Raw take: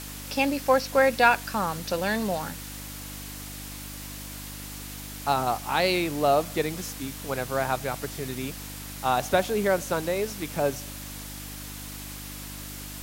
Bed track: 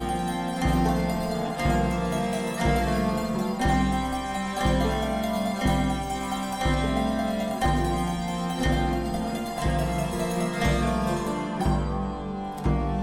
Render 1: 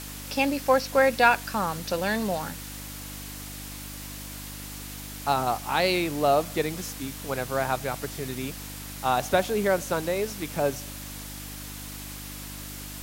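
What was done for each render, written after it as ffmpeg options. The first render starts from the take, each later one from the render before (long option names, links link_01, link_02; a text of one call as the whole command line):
ffmpeg -i in.wav -af anull out.wav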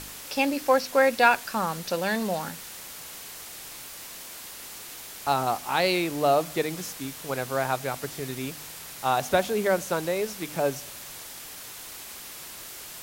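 ffmpeg -i in.wav -af "bandreject=frequency=50:width_type=h:width=4,bandreject=frequency=100:width_type=h:width=4,bandreject=frequency=150:width_type=h:width=4,bandreject=frequency=200:width_type=h:width=4,bandreject=frequency=250:width_type=h:width=4,bandreject=frequency=300:width_type=h:width=4" out.wav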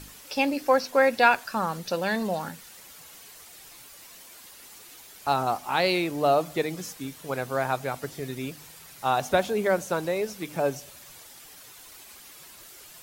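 ffmpeg -i in.wav -af "afftdn=noise_reduction=9:noise_floor=-42" out.wav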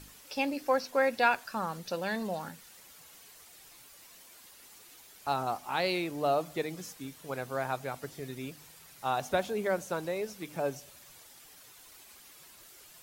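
ffmpeg -i in.wav -af "volume=-6.5dB" out.wav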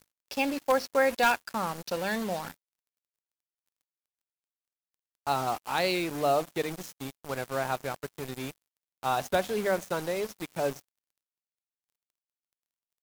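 ffmpeg -i in.wav -filter_complex "[0:a]asplit=2[link_01][link_02];[link_02]aeval=exprs='(mod(6.68*val(0)+1,2)-1)/6.68':channel_layout=same,volume=-9dB[link_03];[link_01][link_03]amix=inputs=2:normalize=0,acrusher=bits=5:mix=0:aa=0.5" out.wav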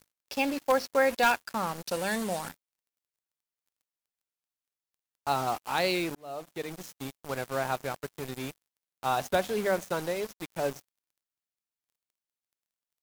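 ffmpeg -i in.wav -filter_complex "[0:a]asettb=1/sr,asplit=3[link_01][link_02][link_03];[link_01]atrim=end=1.864[link_04];[link_02]atrim=start=1.86:end=2.49,asetpts=PTS-STARTPTS,afade=type=in:duration=0.004:curve=qsin,afade=type=out:start_time=0.626:duration=0.004:curve=qsin,equalizer=frequency=9000:width=1.6:gain=8.5[link_05];[link_03]atrim=start=2.486[link_06];[link_04][link_05]acrossfade=duration=0.004:curve1=hsin:curve2=qsin[link_07];[link_07][link_06]acrossfade=duration=0.004:curve1=qsin:curve2=hsin,asettb=1/sr,asplit=3[link_08][link_09][link_10];[link_08]atrim=end=10.134[link_11];[link_09]atrim=start=10.13:end=10.74,asetpts=PTS-STARTPTS,afade=type=in:duration=0.004:curve=qsin,afade=type=out:start_time=0.606:duration=0.004:curve=qsin,aeval=exprs='sgn(val(0))*max(abs(val(0))-0.00631,0)':channel_layout=same[link_12];[link_10]atrim=start=10.736[link_13];[link_11][link_12]acrossfade=duration=0.004:curve1=hsin:curve2=qsin[link_14];[link_14][link_13]acrossfade=duration=0.004:curve1=qsin:curve2=hsin,asplit=2[link_15][link_16];[link_15]atrim=end=6.15,asetpts=PTS-STARTPTS,afade=type=out:start_time=6.146:duration=0.004:curve=hsin[link_17];[link_16]atrim=start=6.15,asetpts=PTS-STARTPTS,afade=type=in:duration=0.88[link_18];[link_17][link_18]concat=n=2:v=0:a=1" out.wav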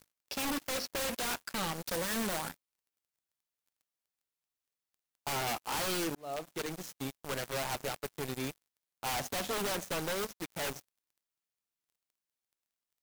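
ffmpeg -i in.wav -af "acrusher=bits=4:mode=log:mix=0:aa=0.000001,aeval=exprs='(mod(31.6*val(0)+1,2)-1)/31.6':channel_layout=same" out.wav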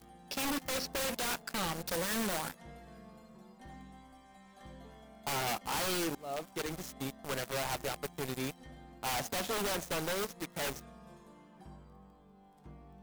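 ffmpeg -i in.wav -i bed.wav -filter_complex "[1:a]volume=-28.5dB[link_01];[0:a][link_01]amix=inputs=2:normalize=0" out.wav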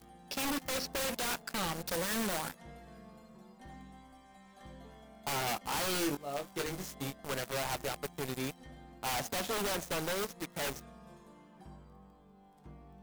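ffmpeg -i in.wav -filter_complex "[0:a]asettb=1/sr,asplit=3[link_01][link_02][link_03];[link_01]atrim=end=5.934[link_04];[link_02]atrim=start=5.93:end=7.27,asetpts=PTS-STARTPTS,afade=type=in:duration=0.004:curve=qsin,afade=type=out:start_time=1.336:duration=0.004:curve=qsin,asplit=2[link_05][link_06];[link_06]adelay=21,volume=-5dB[link_07];[link_05][link_07]amix=inputs=2:normalize=0,atrim=end_sample=59094[link_08];[link_03]atrim=start=7.266[link_09];[link_04][link_08]acrossfade=duration=0.004:curve1=hsin:curve2=qsin[link_10];[link_10][link_09]acrossfade=duration=0.004:curve1=qsin:curve2=hsin" out.wav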